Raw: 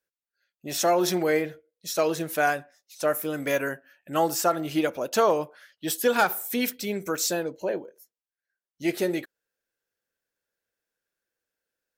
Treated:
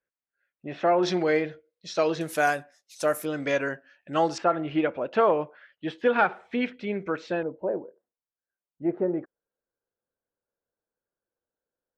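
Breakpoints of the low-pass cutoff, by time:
low-pass 24 dB/octave
2.4 kHz
from 1.03 s 4.9 kHz
from 2.21 s 11 kHz
from 3.25 s 5.5 kHz
from 4.38 s 2.8 kHz
from 7.43 s 1.2 kHz

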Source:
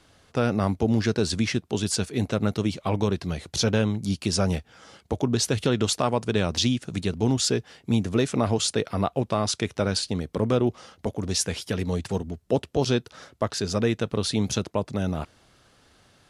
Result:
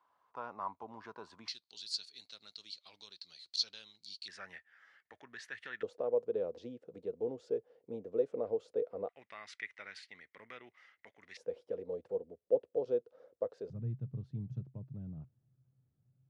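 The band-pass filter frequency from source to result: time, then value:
band-pass filter, Q 9.8
1 kHz
from 1.48 s 4.3 kHz
from 4.28 s 1.8 kHz
from 5.83 s 490 Hz
from 9.09 s 2 kHz
from 11.37 s 500 Hz
from 13.70 s 130 Hz

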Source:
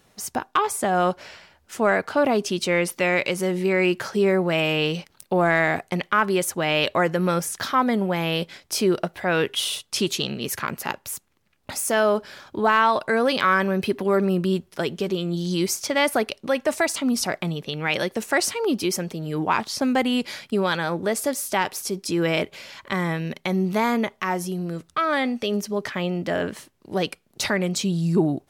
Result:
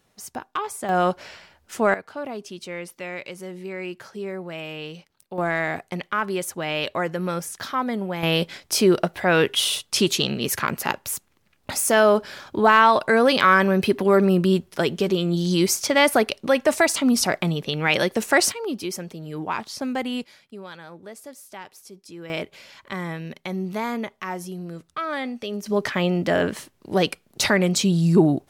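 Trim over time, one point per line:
-6.5 dB
from 0.89 s +0.5 dB
from 1.94 s -12 dB
from 5.38 s -4.5 dB
from 8.23 s +3.5 dB
from 18.52 s -5.5 dB
from 20.24 s -16.5 dB
from 22.30 s -5.5 dB
from 25.66 s +4 dB

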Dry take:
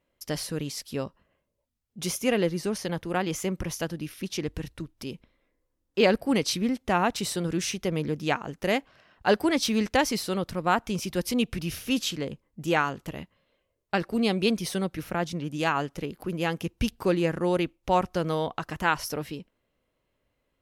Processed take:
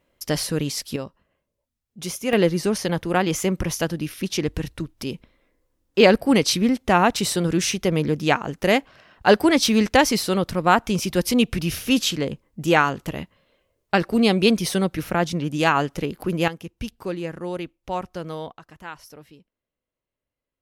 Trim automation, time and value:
+7.5 dB
from 0.96 s 0 dB
from 2.33 s +7 dB
from 16.48 s -4.5 dB
from 18.52 s -12.5 dB

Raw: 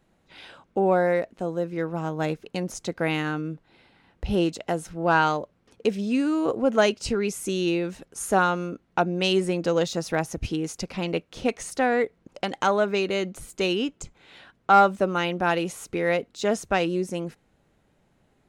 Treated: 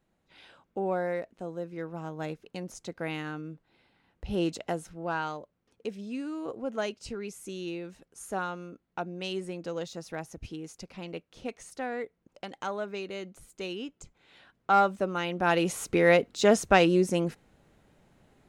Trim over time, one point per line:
4.25 s -9 dB
4.55 s -2.5 dB
5.16 s -12 dB
13.72 s -12 dB
14.73 s -6 dB
15.26 s -6 dB
15.75 s +3 dB

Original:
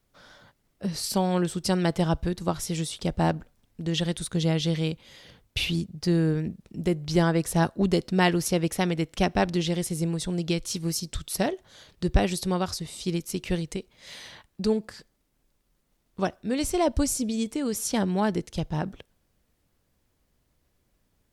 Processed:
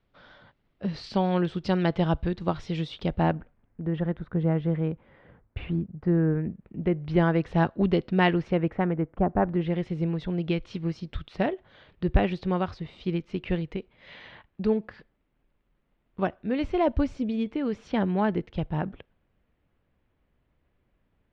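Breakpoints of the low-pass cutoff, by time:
low-pass 24 dB/octave
3.07 s 3.6 kHz
3.84 s 1.7 kHz
6.10 s 1.7 kHz
7.48 s 3.1 kHz
8.26 s 3.1 kHz
9.28 s 1.2 kHz
9.86 s 2.9 kHz

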